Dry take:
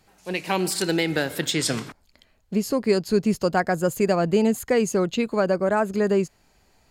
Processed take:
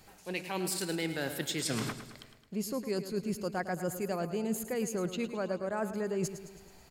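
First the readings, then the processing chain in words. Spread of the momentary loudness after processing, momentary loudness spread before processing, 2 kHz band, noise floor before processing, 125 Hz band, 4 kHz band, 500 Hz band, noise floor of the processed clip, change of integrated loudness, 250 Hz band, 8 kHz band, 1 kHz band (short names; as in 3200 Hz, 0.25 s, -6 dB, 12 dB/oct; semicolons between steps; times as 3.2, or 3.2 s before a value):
7 LU, 7 LU, -11.0 dB, -63 dBFS, -10.0 dB, -10.0 dB, -12.5 dB, -58 dBFS, -11.5 dB, -11.5 dB, -7.5 dB, -12.5 dB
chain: high shelf 10000 Hz +7 dB; reverse; compressor 8:1, threshold -34 dBFS, peak gain reduction 18.5 dB; reverse; feedback echo 0.108 s, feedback 56%, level -11.5 dB; gain +2.5 dB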